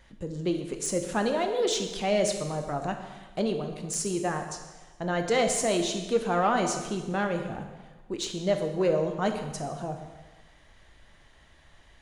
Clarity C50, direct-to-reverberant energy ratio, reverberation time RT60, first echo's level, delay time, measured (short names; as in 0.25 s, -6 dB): 7.0 dB, 5.0 dB, 1.3 s, none, none